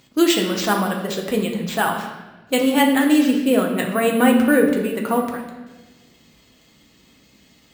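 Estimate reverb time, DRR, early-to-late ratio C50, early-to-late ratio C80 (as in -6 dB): 1.2 s, 0.5 dB, 5.0 dB, 7.5 dB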